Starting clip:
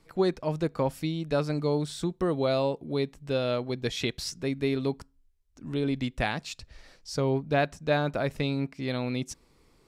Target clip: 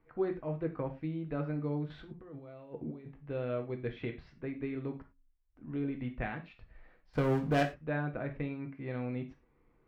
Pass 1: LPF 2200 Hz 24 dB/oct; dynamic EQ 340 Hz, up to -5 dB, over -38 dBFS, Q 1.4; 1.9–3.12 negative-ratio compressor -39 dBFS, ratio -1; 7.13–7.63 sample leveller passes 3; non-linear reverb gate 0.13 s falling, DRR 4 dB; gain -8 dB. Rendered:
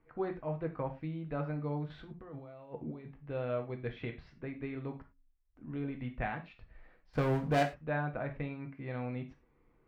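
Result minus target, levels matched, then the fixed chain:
1000 Hz band +3.5 dB
LPF 2200 Hz 24 dB/oct; dynamic EQ 830 Hz, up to -5 dB, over -38 dBFS, Q 1.4; 1.9–3.12 negative-ratio compressor -39 dBFS, ratio -1; 7.13–7.63 sample leveller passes 3; non-linear reverb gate 0.13 s falling, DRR 4 dB; gain -8 dB

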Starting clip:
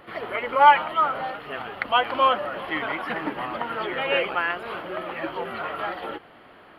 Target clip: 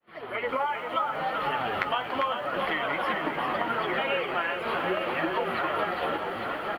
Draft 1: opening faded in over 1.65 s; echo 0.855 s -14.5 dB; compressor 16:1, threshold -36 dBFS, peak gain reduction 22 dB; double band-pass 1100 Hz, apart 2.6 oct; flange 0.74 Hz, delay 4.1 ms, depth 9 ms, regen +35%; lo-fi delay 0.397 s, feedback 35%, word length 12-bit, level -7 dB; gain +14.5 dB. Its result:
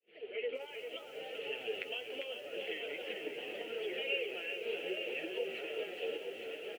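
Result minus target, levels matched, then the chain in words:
1000 Hz band -15.5 dB
opening faded in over 1.65 s; echo 0.855 s -14.5 dB; compressor 16:1, threshold -36 dBFS, peak gain reduction 22 dB; flange 0.74 Hz, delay 4.1 ms, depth 9 ms, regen +35%; lo-fi delay 0.397 s, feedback 35%, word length 12-bit, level -7 dB; gain +14.5 dB

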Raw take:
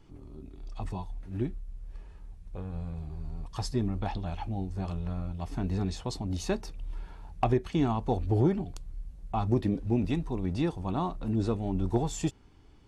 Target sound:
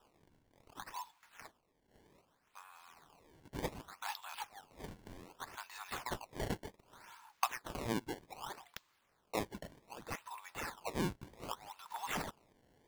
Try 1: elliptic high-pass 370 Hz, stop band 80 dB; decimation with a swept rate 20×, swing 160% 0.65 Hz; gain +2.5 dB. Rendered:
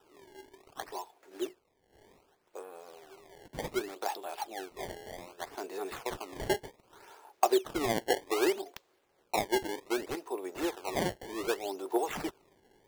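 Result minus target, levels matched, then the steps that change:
500 Hz band +5.0 dB
change: elliptic high-pass 970 Hz, stop band 80 dB

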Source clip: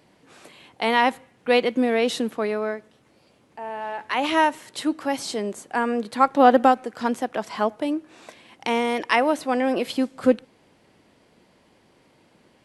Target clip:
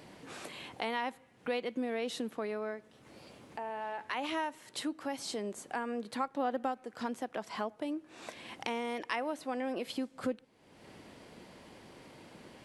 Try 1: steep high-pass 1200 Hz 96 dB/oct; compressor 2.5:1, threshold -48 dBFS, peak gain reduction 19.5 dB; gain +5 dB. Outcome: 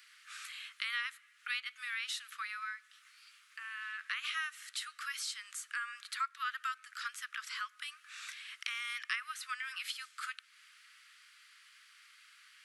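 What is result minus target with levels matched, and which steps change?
1000 Hz band -4.0 dB
remove: steep high-pass 1200 Hz 96 dB/oct

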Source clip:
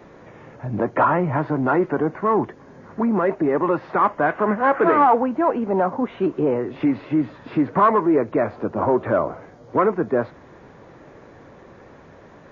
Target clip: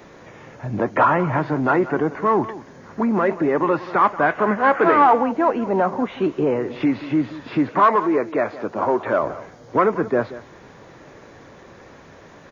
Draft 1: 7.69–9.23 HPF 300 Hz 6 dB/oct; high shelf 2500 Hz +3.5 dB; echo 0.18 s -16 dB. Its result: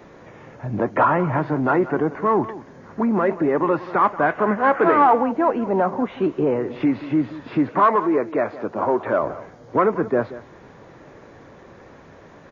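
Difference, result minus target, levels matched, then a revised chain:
4000 Hz band -4.0 dB
7.69–9.23 HPF 300 Hz 6 dB/oct; high shelf 2500 Hz +11 dB; echo 0.18 s -16 dB

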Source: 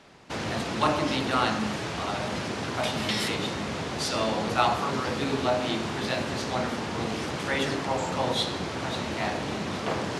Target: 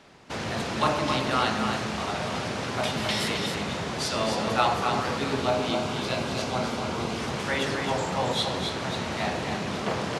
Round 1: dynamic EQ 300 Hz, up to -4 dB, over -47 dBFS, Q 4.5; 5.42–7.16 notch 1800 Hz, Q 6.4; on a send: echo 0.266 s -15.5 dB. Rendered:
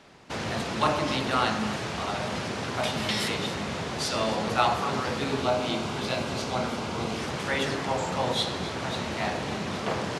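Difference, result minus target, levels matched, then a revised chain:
echo-to-direct -10 dB
dynamic EQ 300 Hz, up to -4 dB, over -47 dBFS, Q 4.5; 5.42–7.16 notch 1800 Hz, Q 6.4; on a send: echo 0.266 s -5.5 dB

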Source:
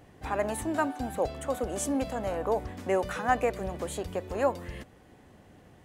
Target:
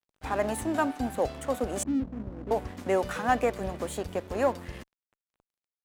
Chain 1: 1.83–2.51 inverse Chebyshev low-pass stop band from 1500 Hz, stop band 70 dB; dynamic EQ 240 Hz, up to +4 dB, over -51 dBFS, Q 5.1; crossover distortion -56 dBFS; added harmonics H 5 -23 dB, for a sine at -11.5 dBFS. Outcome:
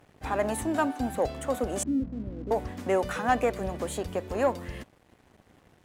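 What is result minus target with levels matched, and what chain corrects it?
crossover distortion: distortion -9 dB
1.83–2.51 inverse Chebyshev low-pass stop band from 1500 Hz, stop band 70 dB; dynamic EQ 240 Hz, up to +4 dB, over -51 dBFS, Q 5.1; crossover distortion -46 dBFS; added harmonics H 5 -23 dB, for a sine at -11.5 dBFS

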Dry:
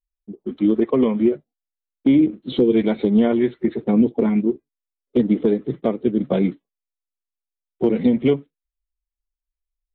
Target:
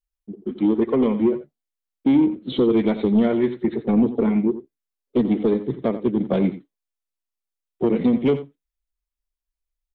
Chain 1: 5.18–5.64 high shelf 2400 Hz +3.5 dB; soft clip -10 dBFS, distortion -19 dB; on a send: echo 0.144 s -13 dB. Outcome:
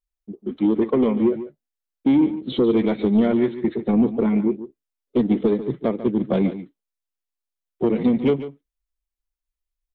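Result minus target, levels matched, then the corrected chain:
echo 57 ms late
5.18–5.64 high shelf 2400 Hz +3.5 dB; soft clip -10 dBFS, distortion -19 dB; on a send: echo 87 ms -13 dB

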